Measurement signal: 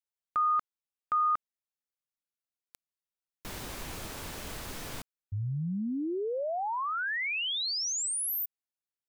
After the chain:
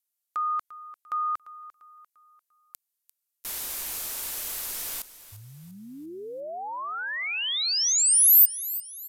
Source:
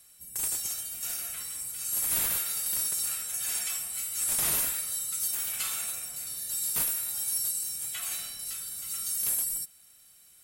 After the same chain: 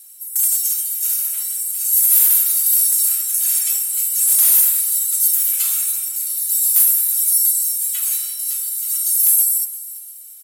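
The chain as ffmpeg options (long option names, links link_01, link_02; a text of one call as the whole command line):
ffmpeg -i in.wav -filter_complex "[0:a]asplit=2[link_01][link_02];[link_02]aecho=0:1:346|692|1038|1384:0.158|0.065|0.0266|0.0109[link_03];[link_01][link_03]amix=inputs=2:normalize=0,aresample=32000,aresample=44100,asubboost=boost=4:cutoff=70,volume=20dB,asoftclip=hard,volume=-20dB,aemphasis=mode=production:type=riaa,volume=-1.5dB" out.wav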